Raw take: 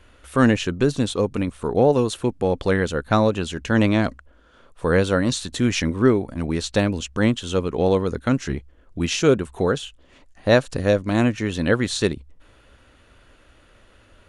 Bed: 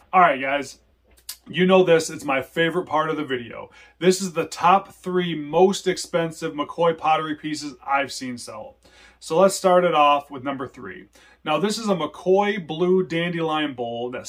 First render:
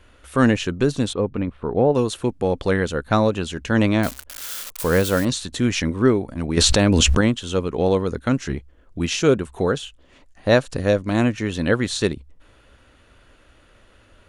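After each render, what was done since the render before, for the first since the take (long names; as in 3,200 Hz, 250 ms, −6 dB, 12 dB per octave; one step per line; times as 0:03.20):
0:01.13–0:01.95: high-frequency loss of the air 370 metres
0:04.03–0:05.25: spike at every zero crossing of −19 dBFS
0:06.57–0:07.21: envelope flattener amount 100%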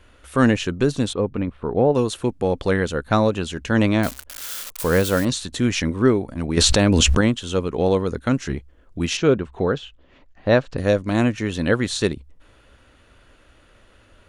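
0:09.17–0:10.78: high-frequency loss of the air 170 metres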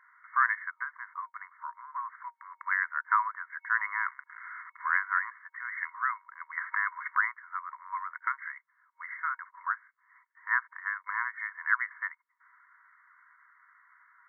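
brick-wall band-pass 940–2,200 Hz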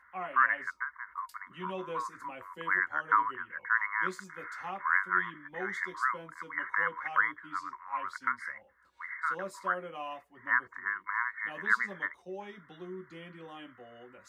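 mix in bed −24 dB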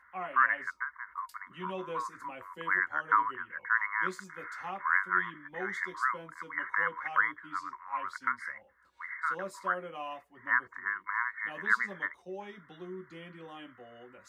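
no processing that can be heard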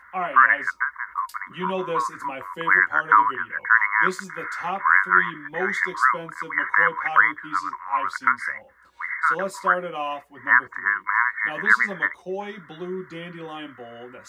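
level +11.5 dB
brickwall limiter −3 dBFS, peak gain reduction 3 dB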